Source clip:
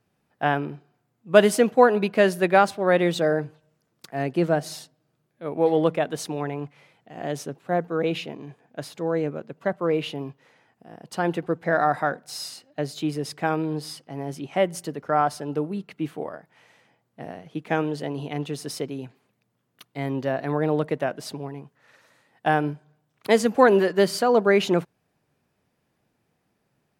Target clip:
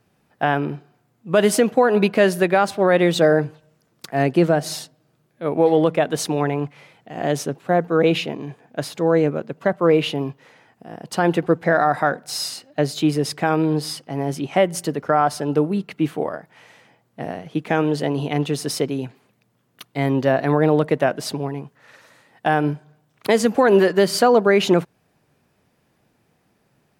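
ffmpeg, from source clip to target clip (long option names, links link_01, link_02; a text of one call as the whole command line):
ffmpeg -i in.wav -af "alimiter=limit=-13.5dB:level=0:latency=1:release=179,volume=8dB" out.wav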